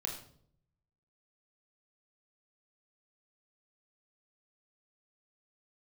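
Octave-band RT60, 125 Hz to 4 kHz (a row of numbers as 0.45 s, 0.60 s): 1.2 s, 0.85 s, 0.70 s, 0.50 s, 0.45 s, 0.45 s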